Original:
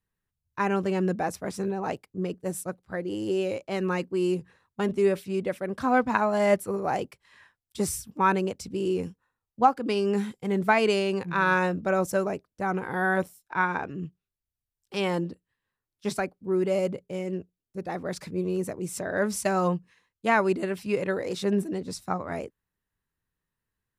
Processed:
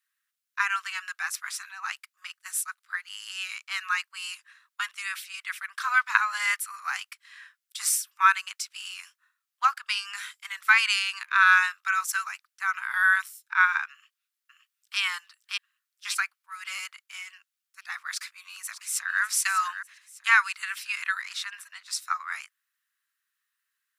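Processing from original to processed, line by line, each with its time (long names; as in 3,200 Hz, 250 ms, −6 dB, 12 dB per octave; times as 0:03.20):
0:13.92–0:15.00: delay throw 570 ms, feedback 35%, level −3 dB
0:18.09–0:19.22: delay throw 600 ms, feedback 40%, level −11.5 dB
0:21.22–0:21.86: high-shelf EQ 4,800 Hz −7.5 dB
whole clip: Butterworth high-pass 1,200 Hz 48 dB per octave; level +8 dB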